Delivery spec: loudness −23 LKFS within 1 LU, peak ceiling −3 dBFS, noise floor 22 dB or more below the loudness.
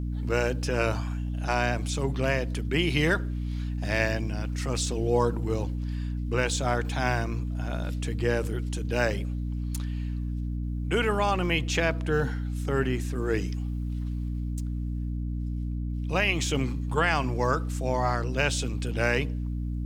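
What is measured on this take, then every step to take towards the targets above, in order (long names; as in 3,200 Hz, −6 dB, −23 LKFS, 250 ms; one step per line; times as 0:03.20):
mains hum 60 Hz; hum harmonics up to 300 Hz; level of the hum −28 dBFS; integrated loudness −28.5 LKFS; sample peak −9.5 dBFS; target loudness −23.0 LKFS
→ hum removal 60 Hz, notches 5
level +5.5 dB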